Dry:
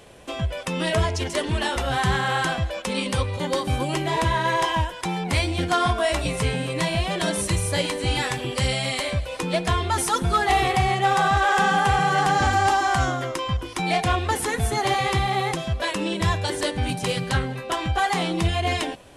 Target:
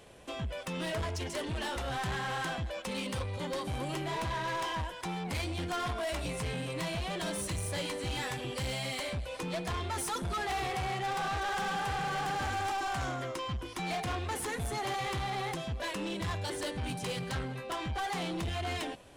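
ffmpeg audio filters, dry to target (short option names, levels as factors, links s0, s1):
-af "asoftclip=type=tanh:threshold=0.0631,volume=0.447"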